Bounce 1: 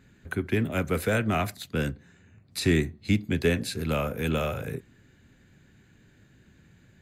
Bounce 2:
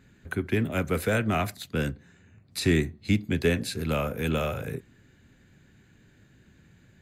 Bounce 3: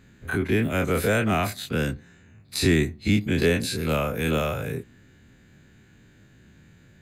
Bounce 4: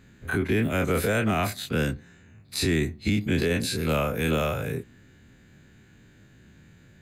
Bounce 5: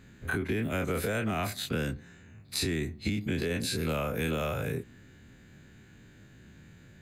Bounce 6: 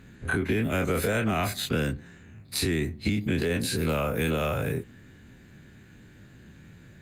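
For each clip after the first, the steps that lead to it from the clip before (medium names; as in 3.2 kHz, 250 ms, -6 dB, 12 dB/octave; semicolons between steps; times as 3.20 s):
no audible change
every event in the spectrogram widened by 60 ms
peak limiter -15 dBFS, peak gain reduction 6.5 dB
compression 4:1, threshold -28 dBFS, peak gain reduction 8 dB
trim +4.5 dB; Opus 32 kbps 48 kHz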